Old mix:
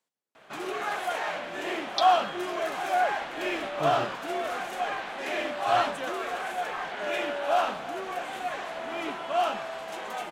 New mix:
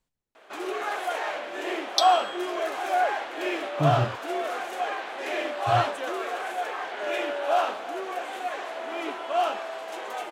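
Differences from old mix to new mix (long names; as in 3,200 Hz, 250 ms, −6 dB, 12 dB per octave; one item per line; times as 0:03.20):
speech: remove high-pass filter 330 Hz 12 dB per octave
first sound: add low shelf with overshoot 230 Hz −14 dB, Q 1.5
second sound: remove high-frequency loss of the air 200 metres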